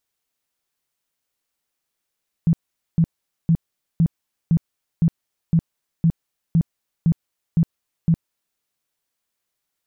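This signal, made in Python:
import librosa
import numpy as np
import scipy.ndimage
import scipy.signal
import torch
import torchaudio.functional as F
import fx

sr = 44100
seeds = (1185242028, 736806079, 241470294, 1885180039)

y = fx.tone_burst(sr, hz=165.0, cycles=10, every_s=0.51, bursts=12, level_db=-12.0)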